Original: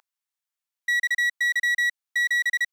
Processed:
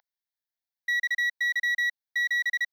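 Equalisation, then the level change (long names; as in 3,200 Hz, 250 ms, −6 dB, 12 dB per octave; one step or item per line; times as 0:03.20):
phaser with its sweep stopped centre 1,800 Hz, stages 8
−3.0 dB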